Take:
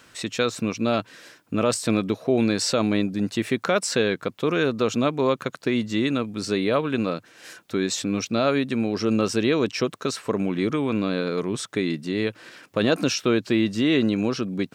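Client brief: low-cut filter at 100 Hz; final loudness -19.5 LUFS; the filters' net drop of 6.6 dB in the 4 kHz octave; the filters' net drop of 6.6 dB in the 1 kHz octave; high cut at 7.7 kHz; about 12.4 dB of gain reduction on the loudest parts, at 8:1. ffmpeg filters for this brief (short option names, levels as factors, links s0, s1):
-af "highpass=100,lowpass=7700,equalizer=f=1000:t=o:g=-9,equalizer=f=4000:t=o:g=-7.5,acompressor=threshold=0.0282:ratio=8,volume=6.68"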